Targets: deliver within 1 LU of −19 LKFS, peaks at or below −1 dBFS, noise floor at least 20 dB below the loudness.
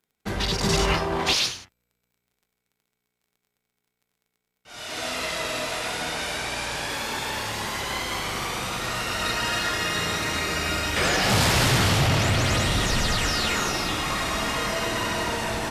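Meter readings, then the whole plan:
crackle rate 22 per second; integrated loudness −24.0 LKFS; sample peak −10.5 dBFS; target loudness −19.0 LKFS
→ click removal
level +5 dB

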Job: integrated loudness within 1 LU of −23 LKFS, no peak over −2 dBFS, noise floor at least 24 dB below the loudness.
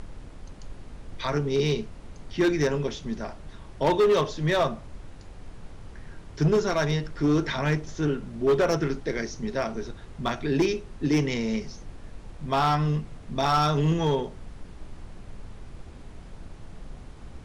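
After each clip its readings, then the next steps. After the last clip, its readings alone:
share of clipped samples 1.2%; peaks flattened at −16.5 dBFS; background noise floor −45 dBFS; target noise floor −50 dBFS; integrated loudness −26.0 LKFS; sample peak −16.5 dBFS; target loudness −23.0 LKFS
→ clipped peaks rebuilt −16.5 dBFS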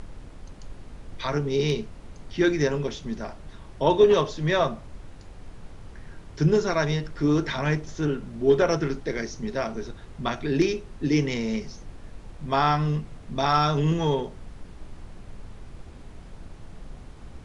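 share of clipped samples 0.0%; background noise floor −45 dBFS; target noise floor −49 dBFS
→ noise reduction from a noise print 6 dB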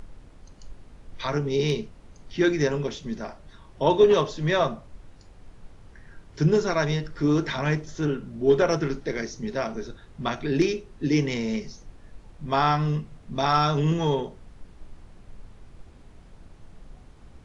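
background noise floor −50 dBFS; integrated loudness −25.0 LKFS; sample peak −7.5 dBFS; target loudness −23.0 LKFS
→ level +2 dB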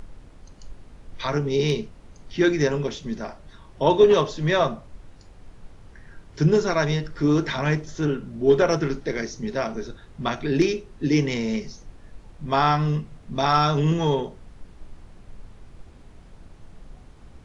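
integrated loudness −23.0 LKFS; sample peak −5.5 dBFS; background noise floor −48 dBFS

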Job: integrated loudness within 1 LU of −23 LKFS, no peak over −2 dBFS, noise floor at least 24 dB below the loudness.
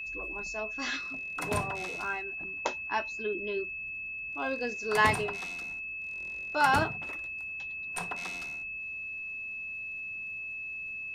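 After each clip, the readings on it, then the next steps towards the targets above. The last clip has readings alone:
crackle rate 26 per second; interfering tone 2,600 Hz; level of the tone −36 dBFS; integrated loudness −32.5 LKFS; sample peak −12.5 dBFS; target loudness −23.0 LKFS
→ click removal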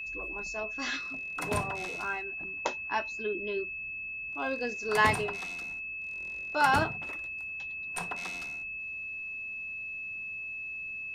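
crackle rate 0.18 per second; interfering tone 2,600 Hz; level of the tone −36 dBFS
→ notch filter 2,600 Hz, Q 30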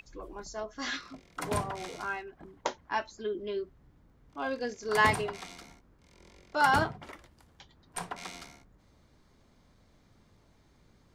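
interfering tone none found; integrated loudness −32.5 LKFS; sample peak −13.0 dBFS; target loudness −23.0 LKFS
→ level +9.5 dB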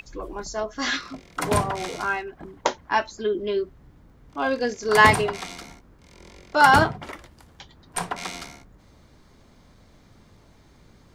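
integrated loudness −23.0 LKFS; sample peak −3.5 dBFS; background noise floor −55 dBFS

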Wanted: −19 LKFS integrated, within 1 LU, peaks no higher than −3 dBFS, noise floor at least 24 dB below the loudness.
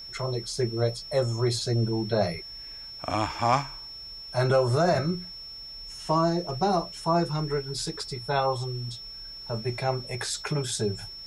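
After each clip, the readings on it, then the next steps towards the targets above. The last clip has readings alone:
interfering tone 5,400 Hz; level of the tone −39 dBFS; integrated loudness −27.5 LKFS; sample peak −9.0 dBFS; target loudness −19.0 LKFS
→ notch filter 5,400 Hz, Q 30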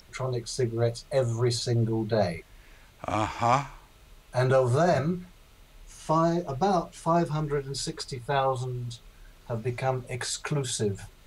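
interfering tone none found; integrated loudness −28.0 LKFS; sample peak −9.0 dBFS; target loudness −19.0 LKFS
→ level +9 dB
brickwall limiter −3 dBFS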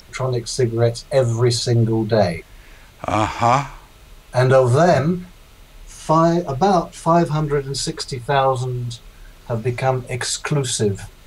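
integrated loudness −19.0 LKFS; sample peak −3.0 dBFS; background noise floor −46 dBFS

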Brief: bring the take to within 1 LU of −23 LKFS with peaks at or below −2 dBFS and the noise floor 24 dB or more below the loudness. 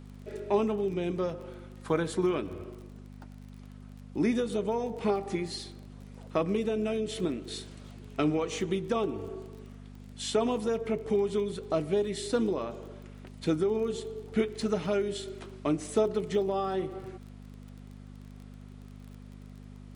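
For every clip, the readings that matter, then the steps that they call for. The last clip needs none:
crackle rate 24 per second; mains hum 50 Hz; hum harmonics up to 250 Hz; level of the hum −45 dBFS; integrated loudness −31.0 LKFS; sample peak −15.0 dBFS; target loudness −23.0 LKFS
→ click removal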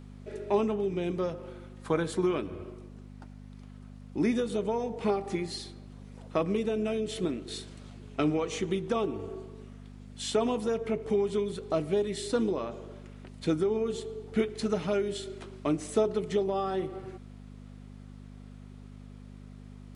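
crackle rate 0.050 per second; mains hum 50 Hz; hum harmonics up to 250 Hz; level of the hum −45 dBFS
→ hum removal 50 Hz, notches 5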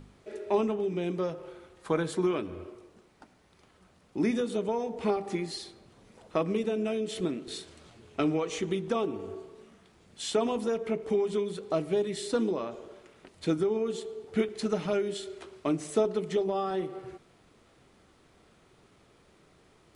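mains hum none found; integrated loudness −31.0 LKFS; sample peak −13.5 dBFS; target loudness −23.0 LKFS
→ level +8 dB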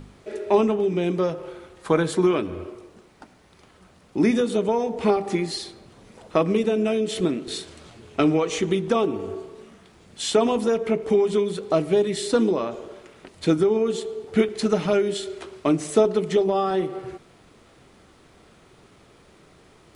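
integrated loudness −23.0 LKFS; sample peak −5.5 dBFS; background noise floor −54 dBFS

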